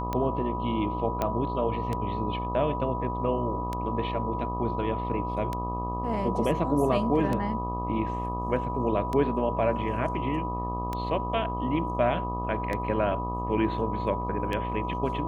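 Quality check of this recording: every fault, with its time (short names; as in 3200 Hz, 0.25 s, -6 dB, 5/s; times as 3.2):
buzz 60 Hz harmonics 21 -33 dBFS
tick 33 1/3 rpm -17 dBFS
tone 980 Hz -32 dBFS
1.22 pop -14 dBFS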